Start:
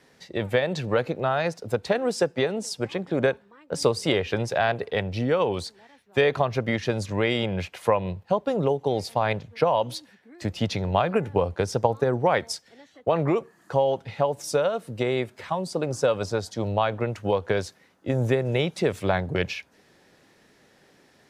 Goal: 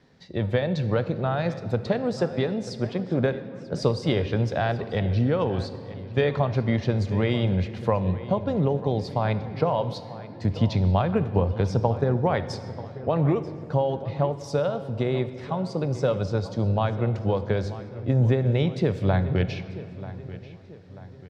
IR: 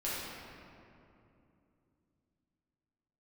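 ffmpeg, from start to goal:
-filter_complex "[0:a]firequalizer=gain_entry='entry(100,0);entry(390,-9);entry(2600,-14);entry(4000,-10);entry(10000,-28)':delay=0.05:min_phase=1,asplit=2[link_01][link_02];[link_02]adelay=938,lowpass=frequency=4500:poles=1,volume=-16dB,asplit=2[link_03][link_04];[link_04]adelay=938,lowpass=frequency=4500:poles=1,volume=0.46,asplit=2[link_05][link_06];[link_06]adelay=938,lowpass=frequency=4500:poles=1,volume=0.46,asplit=2[link_07][link_08];[link_08]adelay=938,lowpass=frequency=4500:poles=1,volume=0.46[link_09];[link_01][link_03][link_05][link_07][link_09]amix=inputs=5:normalize=0,asplit=2[link_10][link_11];[1:a]atrim=start_sample=2205,highshelf=frequency=5200:gain=7.5[link_12];[link_11][link_12]afir=irnorm=-1:irlink=0,volume=-16.5dB[link_13];[link_10][link_13]amix=inputs=2:normalize=0,volume=6dB"

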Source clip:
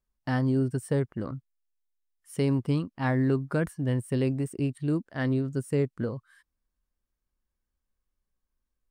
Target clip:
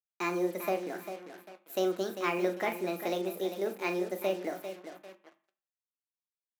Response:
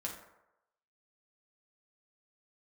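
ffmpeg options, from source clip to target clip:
-filter_complex "[0:a]aecho=1:1:536|1072|1608:0.316|0.0917|0.0266,asetrate=59535,aresample=44100,lowshelf=frequency=380:gain=-8.5,asplit=2[link_01][link_02];[link_02]adelay=40,volume=-9dB[link_03];[link_01][link_03]amix=inputs=2:normalize=0,acrusher=bits=7:mix=0:aa=0.5,highpass=frequency=240:width=0.5412,highpass=frequency=240:width=1.3066,bandreject=frequency=50:width_type=h:width=6,bandreject=frequency=100:width_type=h:width=6,bandreject=frequency=150:width_type=h:width=6,bandreject=frequency=200:width_type=h:width=6,bandreject=frequency=250:width_type=h:width=6,bandreject=frequency=300:width_type=h:width=6,bandreject=frequency=350:width_type=h:width=6,asplit=2[link_04][link_05];[1:a]atrim=start_sample=2205,asetrate=79380,aresample=44100[link_06];[link_05][link_06]afir=irnorm=-1:irlink=0,volume=-0.5dB[link_07];[link_04][link_07]amix=inputs=2:normalize=0,volume=-3dB"

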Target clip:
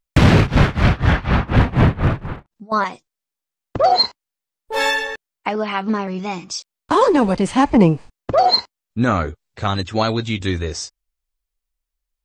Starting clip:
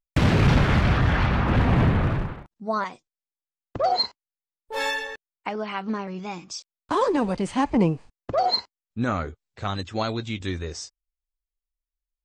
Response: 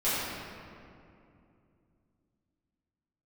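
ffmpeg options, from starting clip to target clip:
-filter_complex "[0:a]asettb=1/sr,asplit=3[link_01][link_02][link_03];[link_01]atrim=end=0.374[link_04];[link_02]atrim=start=0.37:end=2.72,asetpts=PTS-STARTPTS,afade=type=in:duration=0.004:curve=qsin,afade=type=out:start_time=2.346:duration=0.004:curve=qsin,tremolo=f=4.1:d=0.94[link_05];[link_03]atrim=start=2.716[link_06];[link_04][link_05]acrossfade=duration=0.004:curve1=hsin:curve2=qsin[link_07];[link_07][link_06]acrossfade=duration=0.004:curve1=qsin:curve2=hsin,volume=8dB"

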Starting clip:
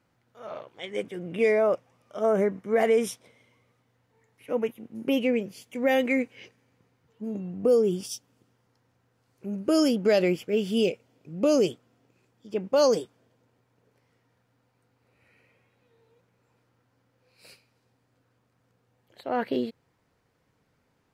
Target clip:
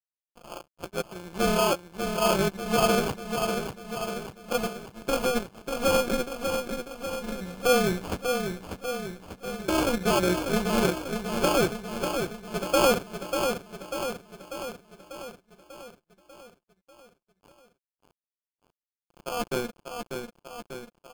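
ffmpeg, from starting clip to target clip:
ffmpeg -i in.wav -filter_complex "[0:a]highpass=76,equalizer=frequency=6300:width=0.77:gain=5.5,bandreject=frequency=50:width_type=h:width=6,bandreject=frequency=100:width_type=h:width=6,bandreject=frequency=150:width_type=h:width=6,bandreject=frequency=200:width_type=h:width=6,bandreject=frequency=250:width_type=h:width=6,bandreject=frequency=300:width_type=h:width=6,asplit=2[link_01][link_02];[link_02]aeval=exprs='0.126*(abs(mod(val(0)/0.126+3,4)-2)-1)':channel_layout=same,volume=-5dB[link_03];[link_01][link_03]amix=inputs=2:normalize=0,superequalizer=6b=0.631:15b=1.78,acompressor=mode=upward:threshold=-35dB:ratio=2.5,aeval=exprs='sgn(val(0))*max(abs(val(0))-0.0158,0)':channel_layout=same,tremolo=f=250:d=0.824,aecho=1:1:5.7:0.48,acrusher=samples=23:mix=1:aa=0.000001,aecho=1:1:593|1186|1779|2372|2965|3558|4151|4744:0.501|0.296|0.174|0.103|0.0607|0.0358|0.0211|0.0125" out.wav

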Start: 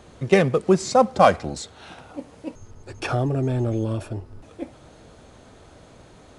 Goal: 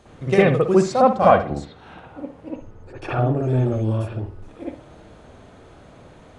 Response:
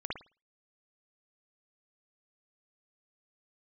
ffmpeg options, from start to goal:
-filter_complex "[0:a]asettb=1/sr,asplit=3[link_01][link_02][link_03];[link_01]atrim=end=1.164[link_04];[link_02]atrim=start=1.16:end=3.4,asetpts=PTS-STARTPTS,afade=type=in:duration=0.004:curve=qsin,afade=type=out:start_time=2.236:duration=0.004:curve=qsin,highshelf=frequency=3000:gain=-10[link_05];[link_03]atrim=start=3.396[link_06];[link_04][link_05]acrossfade=duration=0.004:curve1=hsin:curve2=qsin[link_07];[link_07][link_06]acrossfade=duration=0.004:curve1=qsin:curve2=hsin[link_08];[1:a]atrim=start_sample=2205,asetrate=42336,aresample=44100[link_09];[link_08][link_09]afir=irnorm=-1:irlink=0,volume=-1dB"

